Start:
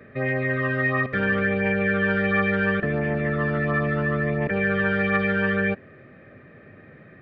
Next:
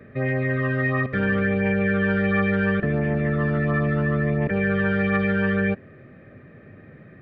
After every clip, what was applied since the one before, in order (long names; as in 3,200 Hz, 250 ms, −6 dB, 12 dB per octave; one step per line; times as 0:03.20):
low-shelf EQ 360 Hz +7 dB
level −2.5 dB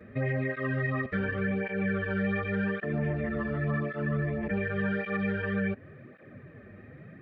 downward compressor, threshold −24 dBFS, peak gain reduction 7.5 dB
through-zero flanger with one copy inverted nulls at 0.89 Hz, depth 7.8 ms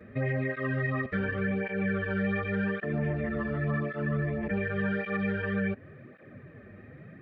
no processing that can be heard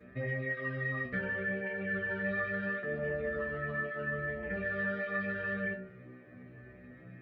stiff-string resonator 61 Hz, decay 0.65 s, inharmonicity 0.002
hum removal 64.02 Hz, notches 37
level +8 dB